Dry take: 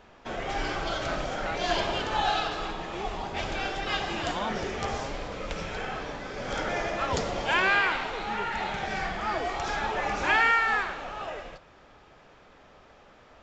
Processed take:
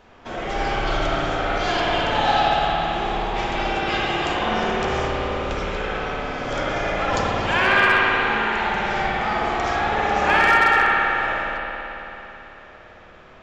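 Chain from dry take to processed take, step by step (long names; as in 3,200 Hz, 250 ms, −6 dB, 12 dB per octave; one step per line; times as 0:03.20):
spring reverb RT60 3.6 s, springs 55 ms, chirp 80 ms, DRR −5 dB
hard clipping −10.5 dBFS, distortion −29 dB
level +2 dB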